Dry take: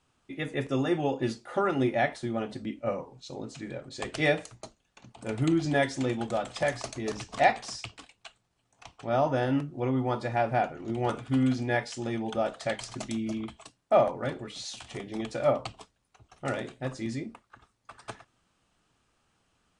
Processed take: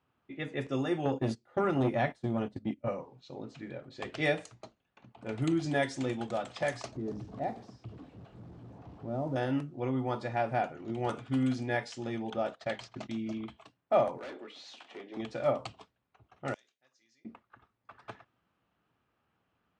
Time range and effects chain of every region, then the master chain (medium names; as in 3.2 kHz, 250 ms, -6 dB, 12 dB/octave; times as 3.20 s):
1.05–2.88 s: gate -38 dBFS, range -17 dB + bass shelf 250 Hz +11.5 dB + transformer saturation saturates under 480 Hz
6.92–9.36 s: jump at every zero crossing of -34 dBFS + FFT filter 310 Hz 0 dB, 2.5 kHz -24 dB, 4.5 kHz -20 dB
12.30–13.46 s: gate -43 dBFS, range -14 dB + Bessel low-pass 6.4 kHz
14.18–15.17 s: high-pass 270 Hz 24 dB/octave + hard clipper -35.5 dBFS
16.54–17.25 s: band-pass filter 6.1 kHz, Q 4.3 + tape noise reduction on one side only decoder only
whole clip: level-controlled noise filter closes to 2.4 kHz, open at -22.5 dBFS; high-pass 75 Hz; trim -4 dB